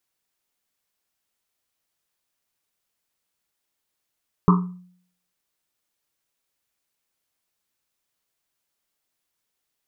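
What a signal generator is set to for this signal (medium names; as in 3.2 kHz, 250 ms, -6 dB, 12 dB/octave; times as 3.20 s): Risset drum, pitch 180 Hz, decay 0.60 s, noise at 1.1 kHz, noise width 330 Hz, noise 25%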